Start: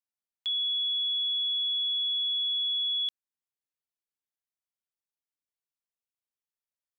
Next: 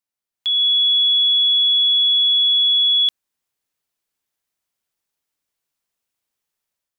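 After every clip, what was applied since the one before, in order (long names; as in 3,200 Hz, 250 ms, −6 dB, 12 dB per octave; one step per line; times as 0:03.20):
automatic gain control gain up to 8.5 dB
level +5 dB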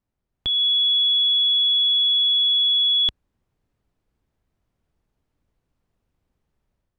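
spectral tilt −5.5 dB per octave
level +6.5 dB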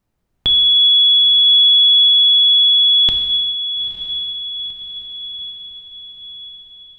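feedback delay with all-pass diffusion 929 ms, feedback 53%, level −11 dB
reverb whose tail is shaped and stops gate 480 ms falling, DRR 5 dB
level +9 dB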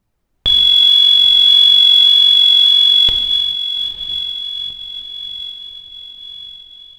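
phase shifter 1.7 Hz, delay 4 ms, feedback 41%
level +1 dB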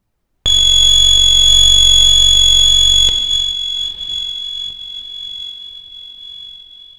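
stylus tracing distortion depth 0.043 ms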